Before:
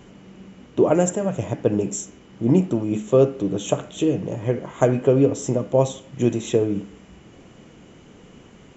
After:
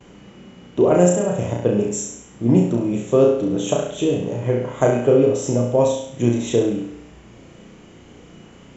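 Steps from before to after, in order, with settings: gate with hold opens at -40 dBFS; on a send: flutter echo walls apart 5.8 m, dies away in 0.65 s

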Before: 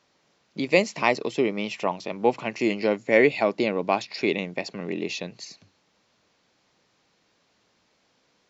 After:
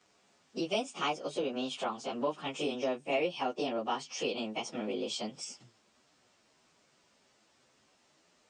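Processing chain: frequency-domain pitch shifter +3.5 st; compression 2.5:1, threshold -37 dBFS, peak gain reduction 14 dB; trim +2.5 dB

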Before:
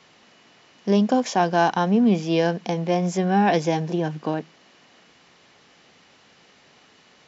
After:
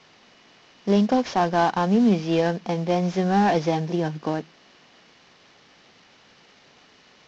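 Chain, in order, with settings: CVSD coder 32 kbps

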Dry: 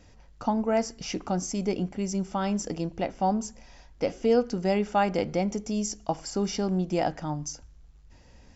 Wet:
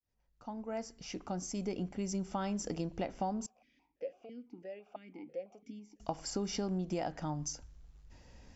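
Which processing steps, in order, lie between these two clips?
fade-in on the opening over 2.59 s; compression 6:1, threshold -29 dBFS, peak gain reduction 11.5 dB; 3.46–6.00 s: stepped vowel filter 6 Hz; trim -3 dB

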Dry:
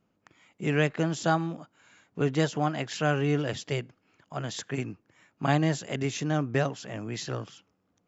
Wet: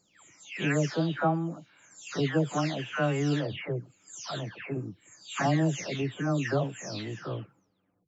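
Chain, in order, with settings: delay that grows with frequency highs early, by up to 467 ms

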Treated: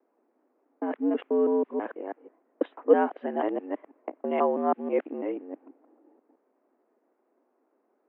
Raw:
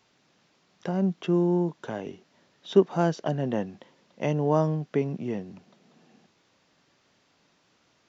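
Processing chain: time reversed locally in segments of 163 ms; level-controlled noise filter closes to 650 Hz, open at -19.5 dBFS; mistuned SSB +87 Hz 170–2500 Hz

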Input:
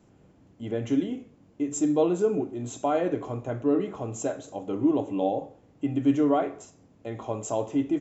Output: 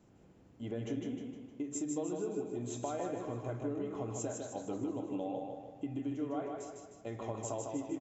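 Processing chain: compression, threshold -31 dBFS, peak gain reduction 13.5 dB; feedback delay 154 ms, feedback 49%, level -4 dB; trim -5 dB

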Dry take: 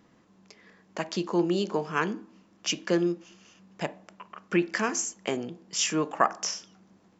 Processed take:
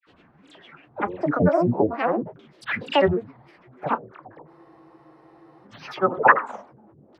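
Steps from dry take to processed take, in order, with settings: phase dispersion lows, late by 75 ms, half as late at 2 kHz; LFO low-pass saw down 0.42 Hz 490–2700 Hz; granulator, spray 37 ms, pitch spread up and down by 12 st; spectral freeze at 4.51 s, 1.15 s; trim +6 dB

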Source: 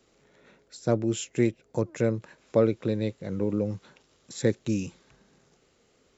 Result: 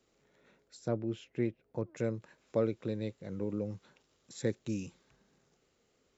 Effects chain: 0.88–1.97 s: distance through air 230 m; trim -8.5 dB

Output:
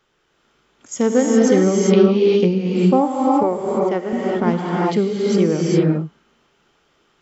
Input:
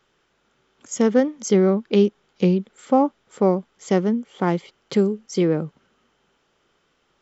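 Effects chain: 3.43–4.13 s: tone controls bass -14 dB, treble -15 dB; gated-style reverb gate 430 ms rising, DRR -3.5 dB

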